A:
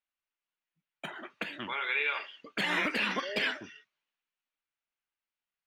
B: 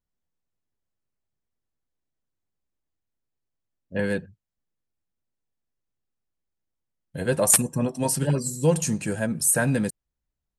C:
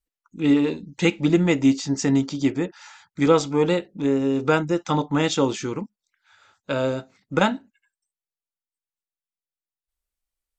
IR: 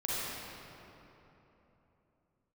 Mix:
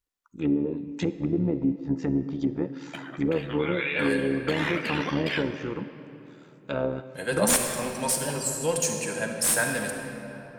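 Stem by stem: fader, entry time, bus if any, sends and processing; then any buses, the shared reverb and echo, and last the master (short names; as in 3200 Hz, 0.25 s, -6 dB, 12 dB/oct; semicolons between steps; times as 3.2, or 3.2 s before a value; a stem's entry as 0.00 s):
+2.5 dB, 1.90 s, bus A, send -19 dB, dry
-1.0 dB, 0.00 s, no bus, send -6 dB, HPF 1000 Hz 6 dB/oct; slew limiter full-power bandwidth 610 Hz
-2.0 dB, 0.00 s, bus A, send -22 dB, treble ducked by the level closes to 520 Hz, closed at -16.5 dBFS
bus A: 0.0 dB, AM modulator 73 Hz, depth 50%; limiter -16.5 dBFS, peak gain reduction 6 dB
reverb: on, RT60 3.4 s, pre-delay 35 ms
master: dry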